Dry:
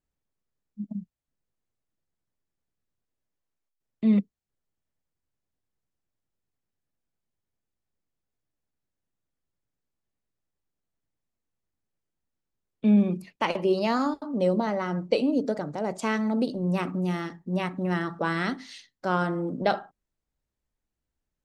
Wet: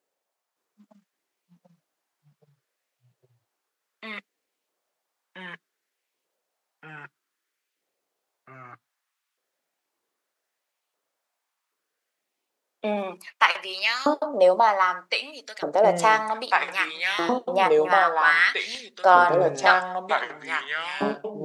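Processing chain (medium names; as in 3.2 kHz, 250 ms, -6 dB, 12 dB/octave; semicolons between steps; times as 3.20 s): LFO high-pass saw up 0.64 Hz 460–2700 Hz; ever faster or slower copies 567 ms, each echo -3 st, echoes 3; trim +7.5 dB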